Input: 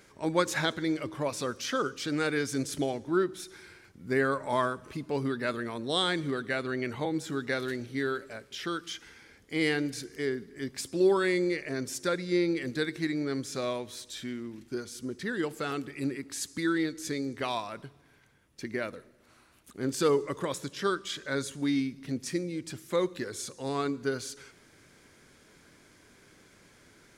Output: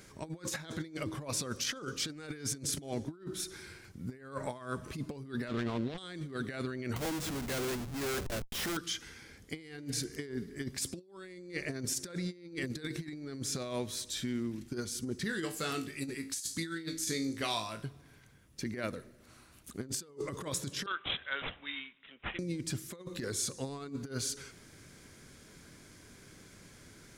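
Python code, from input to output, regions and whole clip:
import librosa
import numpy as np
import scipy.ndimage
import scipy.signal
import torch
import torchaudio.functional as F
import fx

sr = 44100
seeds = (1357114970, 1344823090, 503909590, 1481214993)

y = fx.chain(x, sr, fx.dead_time(dead_ms=0.21),
    fx.lowpass(hz=3500.0, slope=12), at=(5.48, 5.98))
y = fx.chain(y, sr, fx.low_shelf(hz=85.0, db=-9.5),
    fx.notch(hz=850.0, q=24.0),
    fx.schmitt(flips_db=-45.0), at=(6.96, 8.77))
y = fx.chain(y, sr, fx.high_shelf(hz=2100.0, db=9.0),
    fx.comb_fb(f0_hz=54.0, decay_s=0.31, harmonics='all', damping=0.0, mix_pct=80), at=(15.24, 17.84))
y = fx.chain(y, sr, fx.highpass(hz=1200.0, slope=12),
    fx.resample_bad(factor=6, down='none', up='filtered'),
    fx.band_widen(depth_pct=40), at=(20.86, 22.39))
y = fx.bass_treble(y, sr, bass_db=7, treble_db=5)
y = fx.notch(y, sr, hz=890.0, q=28.0)
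y = fx.over_compress(y, sr, threshold_db=-33.0, ratio=-0.5)
y = y * librosa.db_to_amplitude(-4.0)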